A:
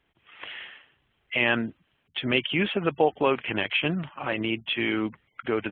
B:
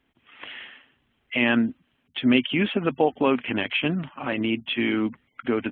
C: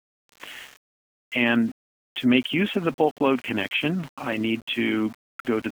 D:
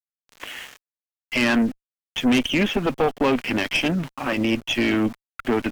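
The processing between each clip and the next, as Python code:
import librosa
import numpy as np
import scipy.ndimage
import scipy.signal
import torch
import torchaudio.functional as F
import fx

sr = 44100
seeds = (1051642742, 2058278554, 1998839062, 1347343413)

y1 = fx.peak_eq(x, sr, hz=250.0, db=12.0, octaves=0.37)
y2 = np.where(np.abs(y1) >= 10.0 ** (-41.0 / 20.0), y1, 0.0)
y3 = fx.tube_stage(y2, sr, drive_db=21.0, bias=0.6)
y3 = F.gain(torch.from_numpy(y3), 7.0).numpy()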